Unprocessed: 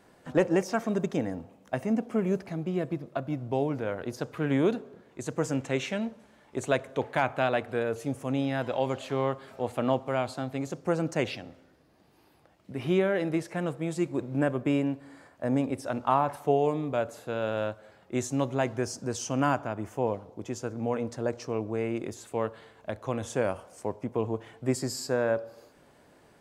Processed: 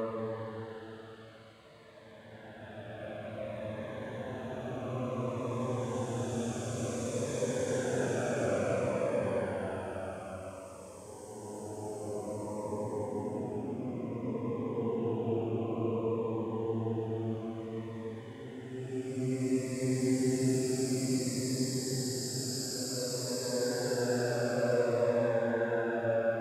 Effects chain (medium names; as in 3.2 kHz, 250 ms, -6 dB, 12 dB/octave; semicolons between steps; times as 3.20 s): Paulstretch 9.2×, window 0.50 s, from 22.50 s; Shepard-style phaser falling 0.56 Hz; trim -1.5 dB